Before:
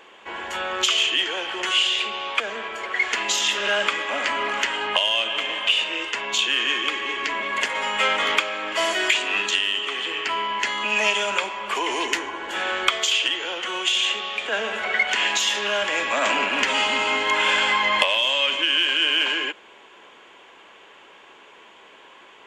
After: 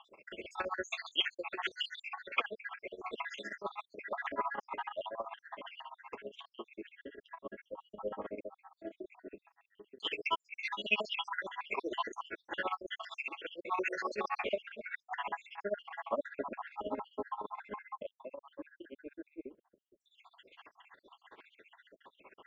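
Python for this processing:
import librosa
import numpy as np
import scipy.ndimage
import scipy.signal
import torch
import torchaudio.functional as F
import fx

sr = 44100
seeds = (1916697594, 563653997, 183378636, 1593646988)

y = fx.spec_dropout(x, sr, seeds[0], share_pct=73)
y = y * (1.0 - 0.85 / 2.0 + 0.85 / 2.0 * np.cos(2.0 * np.pi * 15.0 * (np.arange(len(y)) / sr)))
y = fx.filter_lfo_lowpass(y, sr, shape='saw_down', hz=0.1, low_hz=300.0, high_hz=4300.0, q=0.79)
y = fx.env_flatten(y, sr, amount_pct=50, at=(13.68, 14.56), fade=0.02)
y = y * 10.0 ** (-2.5 / 20.0)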